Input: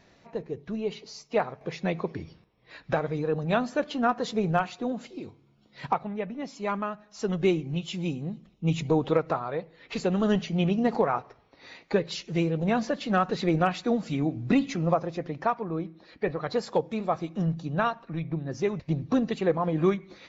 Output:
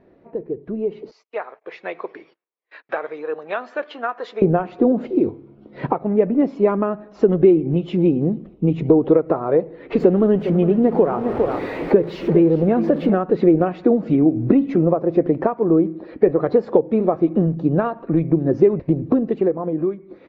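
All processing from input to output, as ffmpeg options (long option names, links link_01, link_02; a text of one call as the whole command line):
ffmpeg -i in.wav -filter_complex "[0:a]asettb=1/sr,asplit=3[link_01][link_02][link_03];[link_01]atrim=end=1.114[link_04];[link_02]atrim=start=1.11:end=4.42,asetpts=PTS-STARTPTS,afade=type=in:duration=0.004:curve=qsin,afade=type=out:start_time=3.306:duration=0.004:curve=qsin,agate=range=-27dB:threshold=-50dB:ratio=16:release=100:detection=peak,highpass=1400[link_05];[link_03]atrim=start=4.416[link_06];[link_04][link_05]acrossfade=duration=0.004:curve1=hsin:curve2=qsin[link_07];[link_07][link_06]acrossfade=duration=0.004:curve1=qsin:curve2=hsin,asettb=1/sr,asplit=3[link_08][link_09][link_10];[link_08]atrim=end=10.004[link_11];[link_09]atrim=start=10:end=13.15,asetpts=PTS-STARTPTS,afade=type=in:duration=0.004:curve=qsin,afade=type=out:start_time=3.146:duration=0.004:curve=qsin,aeval=exprs='val(0)+0.5*0.0178*sgn(val(0))':channel_layout=same,aecho=1:1:406:0.237,atrim=end_sample=138915[link_12];[link_10]atrim=start=13.146[link_13];[link_11][link_12]acrossfade=duration=0.004:curve1=hsin:curve2=qsin[link_14];[link_14][link_13]acrossfade=duration=0.004:curve1=qsin:curve2=hsin,acompressor=threshold=-31dB:ratio=6,firequalizer=gain_entry='entry(150,0);entry(340,11);entry(800,-1);entry(3800,-18);entry(6500,-29)':delay=0.05:min_phase=1,dynaudnorm=framelen=300:gausssize=9:maxgain=12.5dB,volume=1.5dB" out.wav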